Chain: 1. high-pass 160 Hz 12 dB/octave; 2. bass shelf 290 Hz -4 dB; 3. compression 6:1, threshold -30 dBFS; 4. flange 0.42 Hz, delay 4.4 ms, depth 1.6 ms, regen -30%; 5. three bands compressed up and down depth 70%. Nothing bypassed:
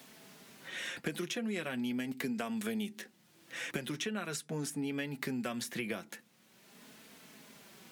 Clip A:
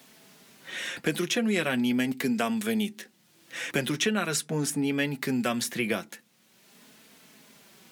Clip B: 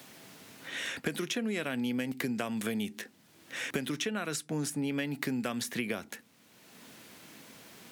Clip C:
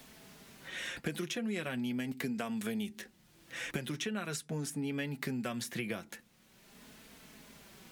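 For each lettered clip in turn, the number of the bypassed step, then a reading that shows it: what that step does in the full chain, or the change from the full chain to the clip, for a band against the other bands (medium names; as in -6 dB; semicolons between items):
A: 3, mean gain reduction 7.5 dB; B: 4, loudness change +3.5 LU; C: 1, 125 Hz band +3.5 dB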